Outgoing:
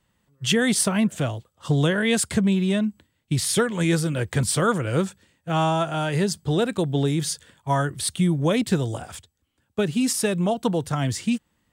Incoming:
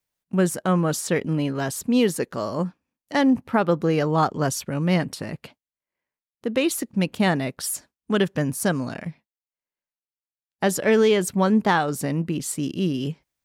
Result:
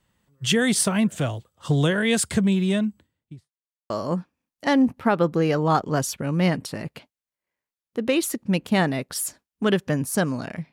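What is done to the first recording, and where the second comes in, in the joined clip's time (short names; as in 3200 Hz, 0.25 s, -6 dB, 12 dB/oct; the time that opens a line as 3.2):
outgoing
2.74–3.52 studio fade out
3.52–3.9 mute
3.9 switch to incoming from 2.38 s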